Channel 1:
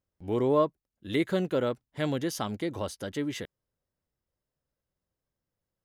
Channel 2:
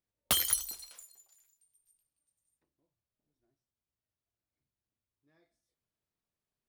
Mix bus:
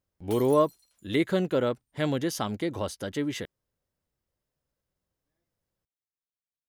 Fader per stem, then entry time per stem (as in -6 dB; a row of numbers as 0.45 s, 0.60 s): +2.0 dB, -17.0 dB; 0.00 s, 0.00 s